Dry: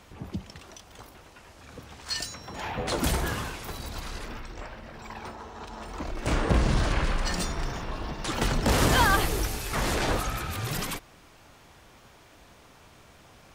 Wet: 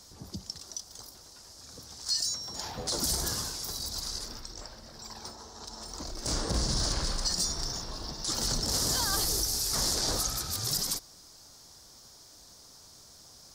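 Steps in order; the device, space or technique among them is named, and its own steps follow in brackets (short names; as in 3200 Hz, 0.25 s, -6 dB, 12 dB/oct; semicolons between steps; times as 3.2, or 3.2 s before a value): over-bright horn tweeter (resonant high shelf 3600 Hz +12 dB, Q 3; limiter -12 dBFS, peak gain reduction 10 dB); gain -6.5 dB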